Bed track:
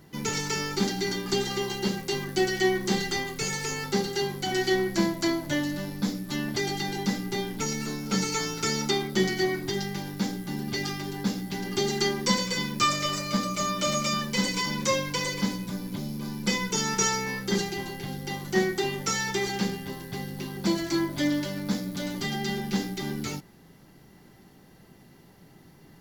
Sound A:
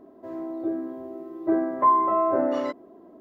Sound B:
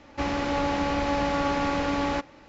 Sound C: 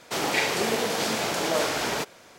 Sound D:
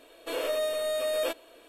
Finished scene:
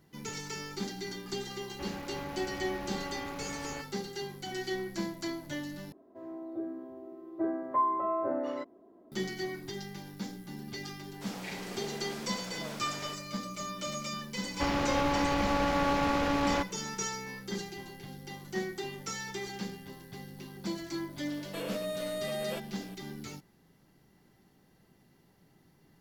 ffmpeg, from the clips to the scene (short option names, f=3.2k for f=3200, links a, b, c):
-filter_complex "[2:a]asplit=2[a][b];[0:a]volume=-10.5dB[c];[b]aeval=exprs='clip(val(0),-1,0.0398)':c=same[d];[4:a]acompressor=threshold=-32dB:ratio=3:attack=0.14:release=740:knee=1:detection=peak[e];[c]asplit=2[f][g];[f]atrim=end=5.924[h];[1:a]atrim=end=3.2,asetpts=PTS-STARTPTS,volume=-9dB[i];[g]atrim=start=9.116[j];[a]atrim=end=2.48,asetpts=PTS-STARTPTS,volume=-15dB,afade=t=in:d=0.004:c=hsin,afade=t=out:st=2.476:d=0.004:c=hsin,adelay=1610[k];[3:a]atrim=end=2.38,asetpts=PTS-STARTPTS,volume=-18dB,afade=t=in:d=0.004:c=hsin,afade=t=out:st=2.376:d=0.004:c=hsin,adelay=11100[l];[d]atrim=end=2.48,asetpts=PTS-STARTPTS,volume=-1dB,afade=t=in:d=0.004:c=hsin,afade=t=out:st=2.476:d=0.004:c=hsin,adelay=14420[m];[e]atrim=end=1.68,asetpts=PTS-STARTPTS,volume=-0.5dB,afade=t=in:d=0.004:c=hsin,afade=t=out:st=1.676:d=0.004:c=hsin,adelay=21270[n];[h][i]acrossfade=d=0.004:c1=hsin:c2=hsin[o];[o][j]acrossfade=d=0.004:c1=hsin:c2=hsin[p];[p][k][l][m][n]amix=inputs=5:normalize=0"